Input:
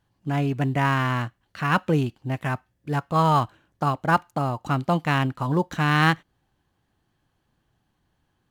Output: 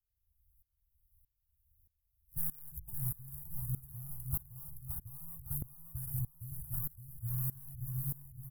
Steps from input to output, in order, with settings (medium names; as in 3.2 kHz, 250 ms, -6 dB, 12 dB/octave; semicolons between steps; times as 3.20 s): reverse the whole clip; treble shelf 6 kHz +9.5 dB; hum notches 50/100/150/200/250/300 Hz; waveshaping leveller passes 2; compression, threshold -21 dBFS, peak gain reduction 10 dB; inverse Chebyshev band-stop 190–5900 Hz, stop band 50 dB; feedback delay 566 ms, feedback 48%, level -4 dB; sawtooth tremolo in dB swelling 1.6 Hz, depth 21 dB; trim +14.5 dB